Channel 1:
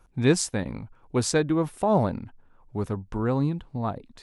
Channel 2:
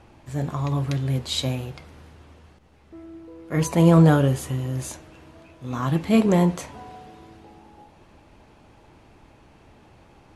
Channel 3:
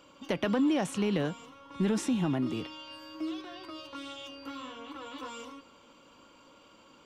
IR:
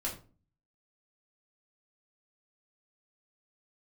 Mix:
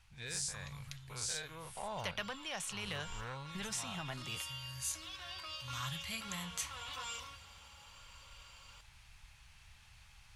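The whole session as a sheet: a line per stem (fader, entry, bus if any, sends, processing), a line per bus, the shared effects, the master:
−11.0 dB, 0.00 s, no send, every bin's largest magnitude spread in time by 120 ms; soft clipping −5.5 dBFS, distortion −25 dB; notch filter 1,200 Hz
0.0 dB, 0.00 s, no send, parametric band 500 Hz −14.5 dB 2 octaves; downward compressor, threshold −26 dBFS, peak gain reduction 10.5 dB; automatic ducking −16 dB, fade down 1.65 s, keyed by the first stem
+2.0 dB, 1.75 s, no send, no processing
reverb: not used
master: guitar amp tone stack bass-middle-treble 10-0-10; speech leveller within 4 dB 0.5 s

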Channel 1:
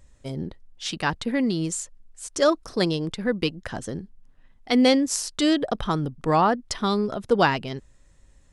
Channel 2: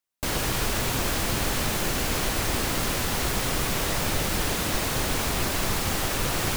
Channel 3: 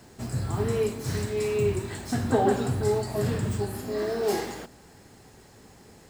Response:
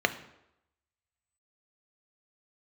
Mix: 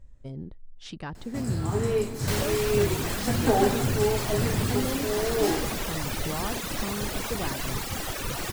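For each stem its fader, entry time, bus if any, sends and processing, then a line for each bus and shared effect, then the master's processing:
−7.5 dB, 0.00 s, no send, spectral tilt −2.5 dB per octave; downward compressor 2 to 1, threshold −30 dBFS, peak gain reduction 10.5 dB
−2.0 dB, 2.05 s, no send, reverb reduction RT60 1.9 s
+0.5 dB, 1.15 s, no send, no processing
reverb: not used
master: no processing

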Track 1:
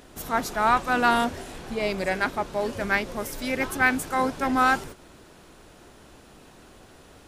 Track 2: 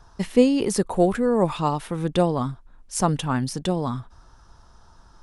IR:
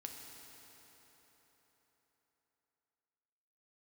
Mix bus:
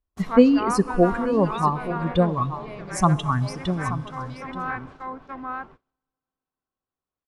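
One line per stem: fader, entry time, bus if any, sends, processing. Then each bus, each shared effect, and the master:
−2.0 dB, 0.00 s, send −20.5 dB, echo send −11 dB, noise gate with hold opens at −37 dBFS; treble cut that deepens with the level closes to 1,900 Hz, closed at −19.5 dBFS; high-shelf EQ 8,400 Hz −10 dB; automatic ducking −14 dB, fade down 1.45 s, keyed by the second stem
0.0 dB, 0.00 s, send −8.5 dB, echo send −11.5 dB, spectral dynamics exaggerated over time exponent 2; low-shelf EQ 200 Hz +7.5 dB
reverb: on, RT60 4.3 s, pre-delay 4 ms
echo: single-tap delay 879 ms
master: parametric band 1,100 Hz +10.5 dB 0.23 octaves; noise gate −45 dBFS, range −22 dB; high-shelf EQ 10,000 Hz −11 dB

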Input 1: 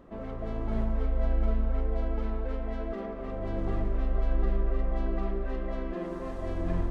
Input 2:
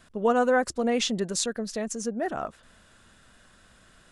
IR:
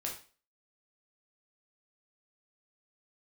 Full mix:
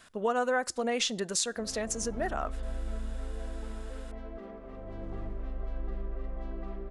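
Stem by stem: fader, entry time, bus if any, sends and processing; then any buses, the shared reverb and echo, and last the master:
−8.5 dB, 1.45 s, no send, no processing
+2.5 dB, 0.00 s, send −23.5 dB, low-shelf EQ 410 Hz −10.5 dB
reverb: on, RT60 0.40 s, pre-delay 7 ms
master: downward compressor 2 to 1, threshold −29 dBFS, peak gain reduction 6.5 dB

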